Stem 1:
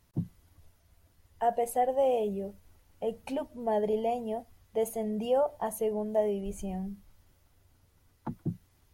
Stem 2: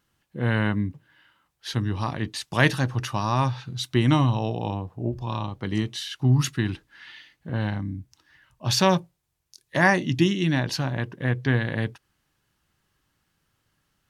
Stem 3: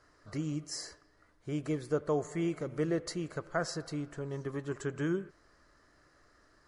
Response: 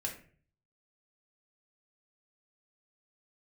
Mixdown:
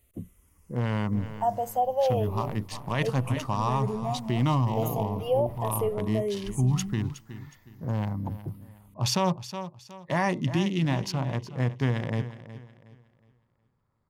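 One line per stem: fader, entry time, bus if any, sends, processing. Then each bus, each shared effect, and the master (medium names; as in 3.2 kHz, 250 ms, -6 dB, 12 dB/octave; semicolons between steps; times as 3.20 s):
+3.0 dB, 0.00 s, no send, no echo send, treble shelf 10 kHz +9 dB; barber-pole phaser -0.34 Hz
-1.5 dB, 0.35 s, no send, echo send -14.5 dB, local Wiener filter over 15 samples
-12.5 dB, 0.80 s, no send, no echo send, tone controls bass +6 dB, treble -12 dB; full-wave rectifier; decay stretcher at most 110 dB/s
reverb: none
echo: feedback delay 366 ms, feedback 32%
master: graphic EQ with 31 bands 315 Hz -6 dB, 1 kHz +4 dB, 1.6 kHz -10 dB, 4 kHz -5 dB; peak limiter -16 dBFS, peak gain reduction 8 dB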